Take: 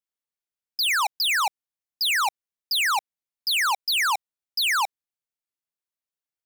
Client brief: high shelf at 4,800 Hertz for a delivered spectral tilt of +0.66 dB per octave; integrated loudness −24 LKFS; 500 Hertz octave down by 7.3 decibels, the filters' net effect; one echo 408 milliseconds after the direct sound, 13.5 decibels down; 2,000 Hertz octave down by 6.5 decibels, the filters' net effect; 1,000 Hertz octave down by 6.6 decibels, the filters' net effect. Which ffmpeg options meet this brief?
ffmpeg -i in.wav -af "equalizer=frequency=500:width_type=o:gain=-8.5,equalizer=frequency=1000:width_type=o:gain=-4,equalizer=frequency=2000:width_type=o:gain=-7.5,highshelf=frequency=4800:gain=3.5,aecho=1:1:408:0.211,volume=1dB" out.wav

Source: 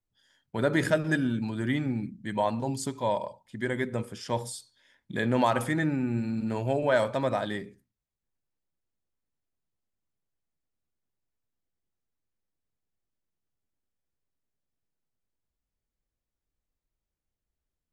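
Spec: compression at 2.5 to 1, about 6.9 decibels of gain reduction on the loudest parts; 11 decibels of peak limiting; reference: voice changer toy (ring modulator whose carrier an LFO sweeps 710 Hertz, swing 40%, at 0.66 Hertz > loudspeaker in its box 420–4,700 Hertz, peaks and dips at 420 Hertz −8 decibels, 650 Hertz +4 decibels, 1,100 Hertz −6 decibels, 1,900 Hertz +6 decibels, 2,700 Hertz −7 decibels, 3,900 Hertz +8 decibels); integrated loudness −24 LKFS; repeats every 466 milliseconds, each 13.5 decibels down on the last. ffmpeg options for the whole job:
ffmpeg -i in.wav -af "acompressor=threshold=-29dB:ratio=2.5,alimiter=level_in=4dB:limit=-24dB:level=0:latency=1,volume=-4dB,aecho=1:1:466|932:0.211|0.0444,aeval=exprs='val(0)*sin(2*PI*710*n/s+710*0.4/0.66*sin(2*PI*0.66*n/s))':channel_layout=same,highpass=420,equalizer=frequency=420:width_type=q:width=4:gain=-8,equalizer=frequency=650:width_type=q:width=4:gain=4,equalizer=frequency=1100:width_type=q:width=4:gain=-6,equalizer=frequency=1900:width_type=q:width=4:gain=6,equalizer=frequency=2700:width_type=q:width=4:gain=-7,equalizer=frequency=3900:width_type=q:width=4:gain=8,lowpass=frequency=4700:width=0.5412,lowpass=frequency=4700:width=1.3066,volume=18dB" out.wav

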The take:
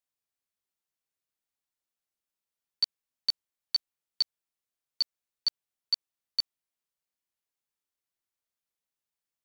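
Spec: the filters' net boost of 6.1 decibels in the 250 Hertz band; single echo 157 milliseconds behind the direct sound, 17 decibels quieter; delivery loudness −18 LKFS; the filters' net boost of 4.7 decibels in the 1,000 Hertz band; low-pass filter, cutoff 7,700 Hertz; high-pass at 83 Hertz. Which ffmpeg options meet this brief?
ffmpeg -i in.wav -af "highpass=83,lowpass=7700,equalizer=frequency=250:width_type=o:gain=7.5,equalizer=frequency=1000:width_type=o:gain=5.5,aecho=1:1:157:0.141,volume=14dB" out.wav

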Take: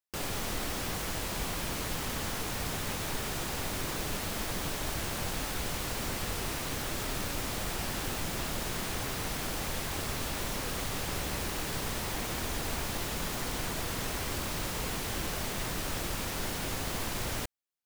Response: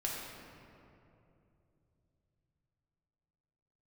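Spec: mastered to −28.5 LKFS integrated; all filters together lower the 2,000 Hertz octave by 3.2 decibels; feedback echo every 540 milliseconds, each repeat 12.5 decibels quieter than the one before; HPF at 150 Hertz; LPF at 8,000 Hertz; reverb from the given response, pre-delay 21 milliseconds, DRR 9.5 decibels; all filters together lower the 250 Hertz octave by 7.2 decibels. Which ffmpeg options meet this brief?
-filter_complex "[0:a]highpass=150,lowpass=8000,equalizer=frequency=250:width_type=o:gain=-9,equalizer=frequency=2000:width_type=o:gain=-4,aecho=1:1:540|1080|1620:0.237|0.0569|0.0137,asplit=2[link_01][link_02];[1:a]atrim=start_sample=2205,adelay=21[link_03];[link_02][link_03]afir=irnorm=-1:irlink=0,volume=-13dB[link_04];[link_01][link_04]amix=inputs=2:normalize=0,volume=8.5dB"

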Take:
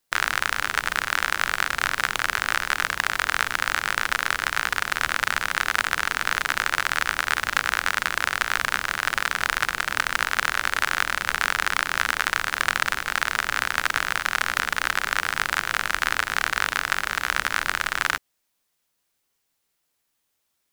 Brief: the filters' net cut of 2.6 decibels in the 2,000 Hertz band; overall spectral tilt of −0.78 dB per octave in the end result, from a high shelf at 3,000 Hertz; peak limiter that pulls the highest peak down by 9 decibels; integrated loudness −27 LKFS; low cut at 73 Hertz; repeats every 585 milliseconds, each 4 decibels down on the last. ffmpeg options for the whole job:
ffmpeg -i in.wav -af "highpass=73,equalizer=frequency=2000:width_type=o:gain=-6,highshelf=frequency=3000:gain=7.5,alimiter=limit=-6.5dB:level=0:latency=1,aecho=1:1:585|1170|1755|2340|2925|3510|4095|4680|5265:0.631|0.398|0.25|0.158|0.0994|0.0626|0.0394|0.0249|0.0157" out.wav

